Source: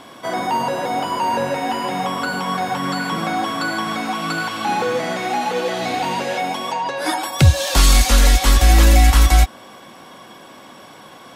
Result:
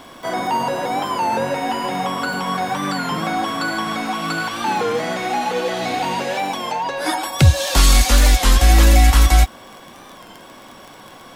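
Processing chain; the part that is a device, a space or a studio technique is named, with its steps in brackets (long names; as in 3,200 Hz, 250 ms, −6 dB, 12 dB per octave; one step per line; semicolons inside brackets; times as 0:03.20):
warped LP (wow of a warped record 33 1/3 rpm, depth 100 cents; surface crackle 20 per second −27 dBFS; pink noise bed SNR 38 dB)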